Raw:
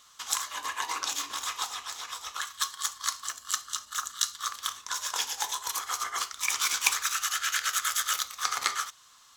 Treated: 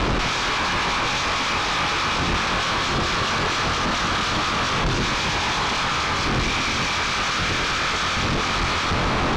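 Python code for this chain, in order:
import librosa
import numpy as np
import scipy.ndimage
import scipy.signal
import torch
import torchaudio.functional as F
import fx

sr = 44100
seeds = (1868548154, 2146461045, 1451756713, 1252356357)

p1 = fx.bin_compress(x, sr, power=0.4)
p2 = fx.dmg_wind(p1, sr, seeds[0], corner_hz=310.0, level_db=-39.0)
p3 = p2 + fx.echo_filtered(p2, sr, ms=148, feedback_pct=82, hz=3600.0, wet_db=-14, dry=0)
p4 = fx.schmitt(p3, sr, flips_db=-30.5)
p5 = scipy.signal.sosfilt(scipy.signal.butter(4, 5200.0, 'lowpass', fs=sr, output='sos'), p4)
p6 = fx.low_shelf(p5, sr, hz=170.0, db=5.5)
p7 = fx.doubler(p6, sr, ms=23.0, db=-5.5)
p8 = 10.0 ** (-17.0 / 20.0) * np.tanh(p7 / 10.0 ** (-17.0 / 20.0))
y = p8 * librosa.db_to_amplitude(3.0)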